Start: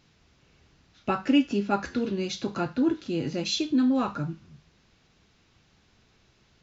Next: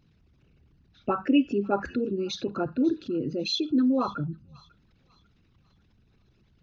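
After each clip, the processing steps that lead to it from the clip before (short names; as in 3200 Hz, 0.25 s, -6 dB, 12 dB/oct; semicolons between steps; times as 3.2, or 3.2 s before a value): formant sharpening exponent 2; thin delay 0.546 s, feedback 36%, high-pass 1500 Hz, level -21 dB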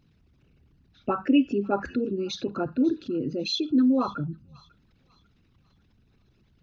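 bell 260 Hz +2.5 dB 0.23 oct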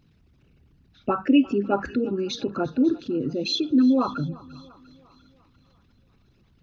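thinning echo 0.347 s, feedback 54%, high-pass 170 Hz, level -21 dB; gain +2.5 dB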